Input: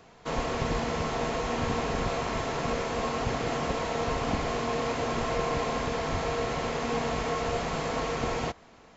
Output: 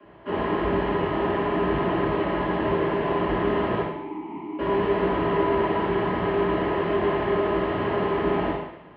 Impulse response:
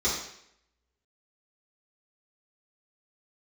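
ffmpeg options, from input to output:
-filter_complex "[0:a]highpass=f=160:t=q:w=0.5412,highpass=f=160:t=q:w=1.307,lowpass=f=2900:t=q:w=0.5176,lowpass=f=2900:t=q:w=0.7071,lowpass=f=2900:t=q:w=1.932,afreqshift=-70,asettb=1/sr,asplit=3[s0][s1][s2];[s0]atrim=end=3.814[s3];[s1]atrim=start=3.81:end=4.59,asetpts=PTS-STARTPTS,afade=t=in:d=0.004:c=qsin,afade=t=out:st=0.776:d=0.004:c=qsin,asplit=3[s4][s5][s6];[s4]bandpass=f=300:t=q:w=8,volume=1[s7];[s5]bandpass=f=870:t=q:w=8,volume=0.501[s8];[s6]bandpass=f=2240:t=q:w=8,volume=0.355[s9];[s7][s8][s9]amix=inputs=3:normalize=0[s10];[s2]atrim=start=4.586[s11];[s3][s10]acrossfade=d=0.004:c1=hsin:c2=qsin[s12];[s12][s11]acrossfade=d=0.004:c1=qsin:c2=hsin[s13];[1:a]atrim=start_sample=2205,asetrate=37044,aresample=44100[s14];[s13][s14]afir=irnorm=-1:irlink=0,volume=0.447"

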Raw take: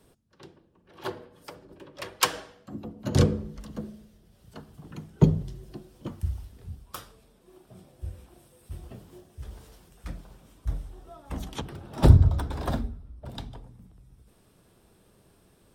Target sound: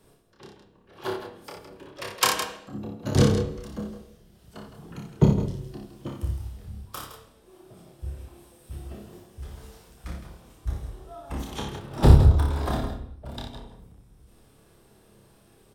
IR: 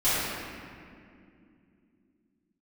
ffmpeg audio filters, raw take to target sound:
-filter_complex "[0:a]asplit=2[s0][s1];[s1]adelay=29,volume=0.668[s2];[s0][s2]amix=inputs=2:normalize=0,aecho=1:1:58.31|163.3:0.562|0.316,asplit=2[s3][s4];[1:a]atrim=start_sample=2205,afade=t=out:st=0.44:d=0.01,atrim=end_sample=19845,asetrate=70560,aresample=44100[s5];[s4][s5]afir=irnorm=-1:irlink=0,volume=0.0841[s6];[s3][s6]amix=inputs=2:normalize=0"

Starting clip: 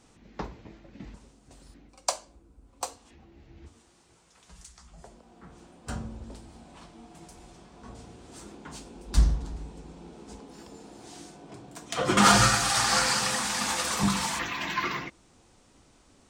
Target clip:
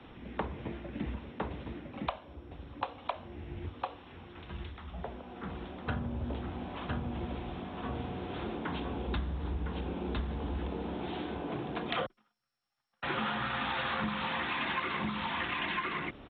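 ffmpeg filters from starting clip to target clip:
-filter_complex "[0:a]acrossover=split=190|3000[s0][s1][s2];[s0]acompressor=threshold=0.0316:ratio=4[s3];[s3][s1][s2]amix=inputs=3:normalize=0,asplit=2[s4][s5];[s5]asoftclip=type=tanh:threshold=0.112,volume=0.447[s6];[s4][s6]amix=inputs=2:normalize=0,aresample=8000,aresample=44100,asplit=2[s7][s8];[s8]aecho=0:1:1007:0.562[s9];[s7][s9]amix=inputs=2:normalize=0,acompressor=threshold=0.0158:ratio=16,asettb=1/sr,asplit=3[s10][s11][s12];[s10]atrim=end=12.064[s13];[s11]atrim=start=12.06:end=13.03,asetpts=PTS-STARTPTS,afade=t=in:d=0.004:c=qsin,afade=t=out:st=0.966:d=0.004:c=qsin,agate=range=0.00126:threshold=0.0251:ratio=16:detection=peak[s14];[s12]atrim=start=13.026[s15];[s13][s14]acrossfade=d=0.004:c1=hsin:c2=qsin[s16];[s16][s15]acrossfade=d=0.004:c1=qsin:c2=hsin,afreqshift=13,volume=1.88" -ar 22050 -c:a mp2 -b:a 32k

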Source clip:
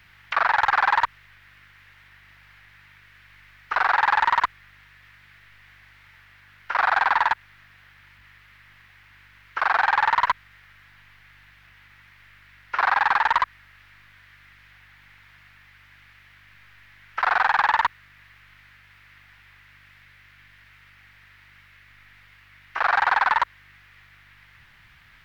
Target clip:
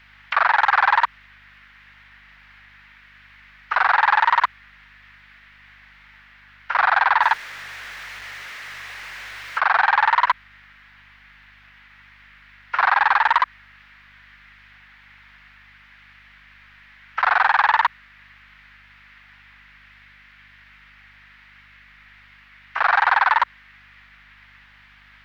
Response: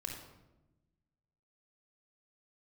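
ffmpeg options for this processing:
-filter_complex "[0:a]asettb=1/sr,asplit=3[s0][s1][s2];[s0]atrim=end=7.224[s3];[s1]atrim=start=7.22:end=9.59,asetpts=PTS-STARTPTS,afade=t=in:d=0.004:c=qsin,afade=t=out:st=2.366:d=0.004:c=qsin,aeval=exprs='val(0)+0.5*0.02*sgn(val(0))':c=same[s4];[s2]atrim=start=9.586[s5];[s3][s4]acrossfade=d=0.004:c1=hsin:c2=qsin[s6];[s6][s5]acrossfade=d=0.004:c1=qsin:c2=hsin,acrossover=split=490 5400:gain=0.158 1 0.251[s7][s8][s9];[s7][s8][s9]amix=inputs=3:normalize=0,aeval=exprs='val(0)+0.000891*(sin(2*PI*50*n/s)+sin(2*PI*2*50*n/s)/2+sin(2*PI*3*50*n/s)/3+sin(2*PI*4*50*n/s)/4+sin(2*PI*5*50*n/s)/5)':c=same,volume=1.5"

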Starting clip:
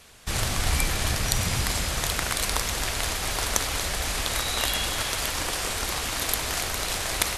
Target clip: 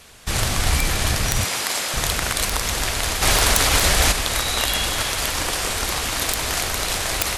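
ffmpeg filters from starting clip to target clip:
-filter_complex "[0:a]asettb=1/sr,asplit=3[s0][s1][s2];[s0]atrim=end=1.454[s3];[s1]atrim=start=1.45:end=1.94,asetpts=PTS-STARTPTS,afade=t=in:d=0.004:c=qsin,afade=t=out:st=0.486:d=0.004:c=qsin,highpass=390[s4];[s2]atrim=start=1.936[s5];[s3][s4]acrossfade=d=0.004:c1=hsin:c2=qsin[s6];[s6][s5]acrossfade=d=0.004:c1=qsin:c2=hsin,asplit=3[s7][s8][s9];[s7]afade=t=out:st=3.21:d=0.02[s10];[s8]acontrast=80,afade=t=in:st=3.21:d=0.02,afade=t=out:st=4.11:d=0.02[s11];[s9]afade=t=in:st=4.11:d=0.02[s12];[s10][s11][s12]amix=inputs=3:normalize=0,aeval=exprs='(mod(2.11*val(0)+1,2)-1)/2.11':c=same,alimiter=level_in=2.99:limit=0.891:release=50:level=0:latency=1,volume=0.596"

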